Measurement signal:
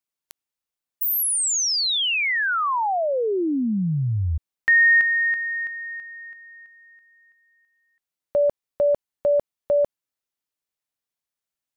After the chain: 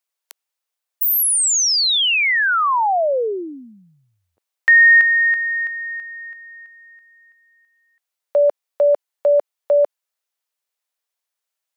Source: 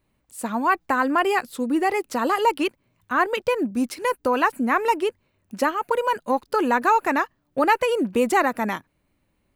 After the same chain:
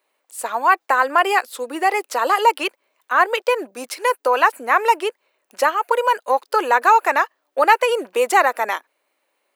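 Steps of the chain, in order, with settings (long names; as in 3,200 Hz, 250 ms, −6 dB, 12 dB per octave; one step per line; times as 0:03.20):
high-pass filter 460 Hz 24 dB per octave
level +5.5 dB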